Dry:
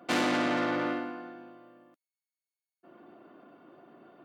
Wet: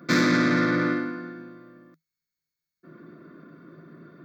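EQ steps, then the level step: low shelf 68 Hz +7 dB; bell 160 Hz +14 dB 0.27 oct; fixed phaser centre 2900 Hz, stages 6; +8.5 dB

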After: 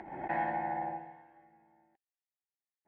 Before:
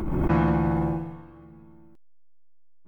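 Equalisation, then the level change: double band-pass 1200 Hz, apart 1.2 oct; +3.0 dB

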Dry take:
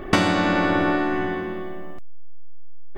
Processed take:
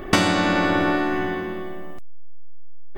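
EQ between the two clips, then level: high shelf 4700 Hz +8 dB; 0.0 dB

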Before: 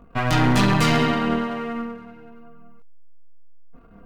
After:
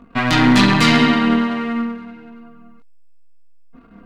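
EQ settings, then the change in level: graphic EQ 250/1000/2000/4000/8000 Hz +12/+5/+8/+10/+4 dB; -3.0 dB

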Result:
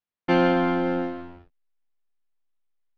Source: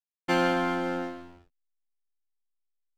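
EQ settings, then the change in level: dynamic EQ 1300 Hz, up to -5 dB, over -41 dBFS, Q 0.74; air absorption 270 m; +7.5 dB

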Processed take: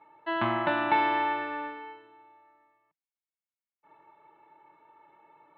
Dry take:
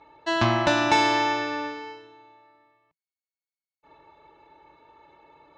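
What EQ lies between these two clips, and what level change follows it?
air absorption 460 m; speaker cabinet 270–3300 Hz, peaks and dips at 270 Hz -9 dB, 400 Hz -8 dB, 720 Hz -7 dB, 1100 Hz -4 dB, 1600 Hz -4 dB, 2500 Hz -5 dB; bell 520 Hz -10.5 dB 0.3 oct; +3.0 dB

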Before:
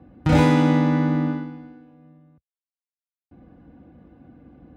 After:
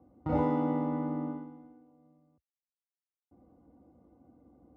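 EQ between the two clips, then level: polynomial smoothing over 65 samples; HPF 70 Hz; bell 150 Hz -9 dB 1.3 oct; -8.0 dB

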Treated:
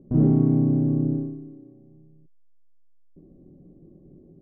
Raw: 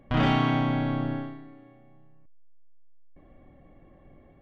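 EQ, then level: synth low-pass 380 Hz, resonance Q 4.2; bell 170 Hz +13.5 dB 0.83 oct; -4.5 dB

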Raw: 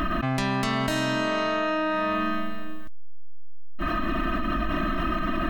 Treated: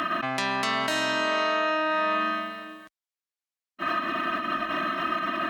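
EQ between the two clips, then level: weighting filter A; +1.5 dB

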